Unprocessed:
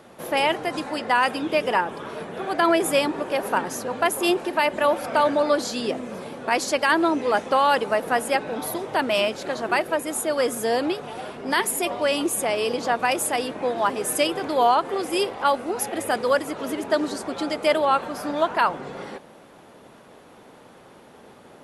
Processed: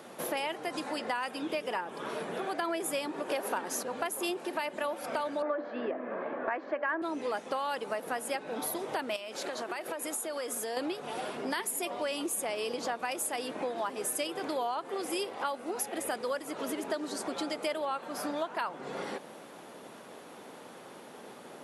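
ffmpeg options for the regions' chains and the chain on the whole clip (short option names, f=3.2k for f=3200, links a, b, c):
-filter_complex "[0:a]asettb=1/sr,asplit=3[a][b][c];[a]atrim=end=3.294[d];[b]atrim=start=3.29:end=3.83,asetpts=PTS-STARTPTS,afade=t=in:d=0.004:c=qsin,afade=t=out:st=0.536:d=0.004:c=qsin,acontrast=64,highpass=200[e];[c]atrim=start=3.826[f];[d][e]acrossfade=d=0.004:c1=hsin:c2=qsin[g];[g][f]acrossfade=d=0.004:c1=qsin:c2=hsin,asettb=1/sr,asplit=3[h][i][j];[h]atrim=end=5.424[k];[i]atrim=start=5.42:end=7.02,asetpts=PTS-STARTPTS,afade=t=in:d=0.004:c=qsin,afade=t=out:st=1.596:d=0.004:c=qsin,highpass=f=180:w=0.5412,highpass=f=180:w=1.3066,equalizer=f=200:t=q:w=4:g=-5,equalizer=f=310:t=q:w=4:g=5,equalizer=f=630:t=q:w=4:g=8,equalizer=f=1.1k:t=q:w=4:g=6,equalizer=f=1.7k:t=q:w=4:g=8,lowpass=f=2.2k:w=0.5412,lowpass=f=2.2k:w=1.3066,bandreject=f=292.8:t=h:w=4,bandreject=f=585.6:t=h:w=4[l];[j]atrim=start=7.016[m];[k][l]acrossfade=d=0.004:c1=hsin:c2=qsin[n];[n][m]acrossfade=d=0.004:c1=qsin:c2=hsin,asettb=1/sr,asplit=3[o][p][q];[o]atrim=end=9.164[r];[p]atrim=start=9.16:end=10.77,asetpts=PTS-STARTPTS,afade=t=in:d=0.004:c=qsin,afade=t=out:st=1.606:d=0.004:c=qsin,highpass=f=310:p=1,acompressor=threshold=-31dB:ratio=4:attack=3.2:release=140:knee=1:detection=peak[s];[q]atrim=start=10.766[t];[r][s]acrossfade=d=0.004:c1=hsin:c2=qsin[u];[u][t]acrossfade=d=0.004:c1=qsin:c2=hsin,highpass=180,highshelf=f=5k:g=4.5,acompressor=threshold=-33dB:ratio=4"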